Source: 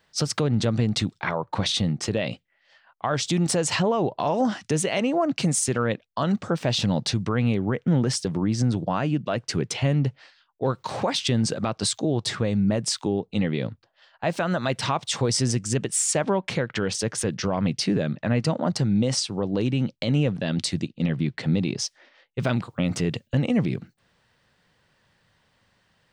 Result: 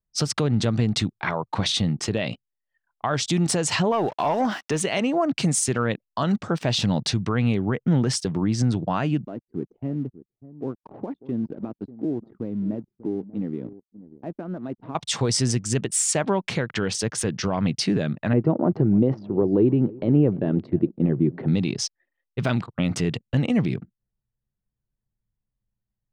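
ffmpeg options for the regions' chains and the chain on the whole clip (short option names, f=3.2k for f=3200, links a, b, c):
-filter_complex "[0:a]asettb=1/sr,asplit=3[a][b][c];[a]atrim=end=3.924[d];[b]atrim=start=3.92:end=4.81,asetpts=PTS-STARTPTS,afade=t=in:d=0.004:c=qsin,afade=t=out:st=0.886:d=0.004:c=qsin,aeval=exprs='val(0)*gte(abs(val(0)),0.0075)':c=same,asplit=2[e][f];[f]highpass=f=720:p=1,volume=10dB,asoftclip=type=tanh:threshold=-13.5dB[g];[e][g]amix=inputs=2:normalize=0,lowpass=f=2.8k:p=1,volume=-6dB[h];[c]atrim=start=4.806[i];[d][h]acrossfade=d=0.004:c1=hsin:c2=qsin[j];[j][i]acrossfade=d=0.004:c1=qsin:c2=hsin,asettb=1/sr,asplit=3[k][l][m];[k]atrim=end=9.254[n];[l]atrim=start=9.25:end=14.95,asetpts=PTS-STARTPTS,afade=t=in:d=0.004:c=qsin,afade=t=out:st=5.696:d=0.004:c=qsin,bandpass=f=290:t=q:w=2,aeval=exprs='sgn(val(0))*max(abs(val(0))-0.0015,0)':c=same,aecho=1:1:591:0.158,atrim=end_sample=251370[o];[m]atrim=start=14.946[p];[n][o]acrossfade=d=0.004:c1=hsin:c2=qsin[q];[q][p]acrossfade=d=0.004:c1=qsin:c2=hsin,asettb=1/sr,asplit=3[r][s][t];[r]atrim=end=18.334[u];[s]atrim=start=18.33:end=21.48,asetpts=PTS-STARTPTS,afade=t=in:d=0.004:c=qsin,afade=t=out:st=3.146:d=0.004:c=qsin,lowpass=1k,equalizer=f=360:t=o:w=0.59:g=12.5,aecho=1:1:303|606|909:0.0841|0.0362|0.0156,atrim=end_sample=138915[v];[t]atrim=start=21.476[w];[u][v]acrossfade=d=0.004:c1=hsin:c2=qsin[x];[x][w]acrossfade=d=0.004:c1=qsin:c2=hsin,anlmdn=0.1,equalizer=f=530:t=o:w=0.25:g=-4.5,volume=1dB"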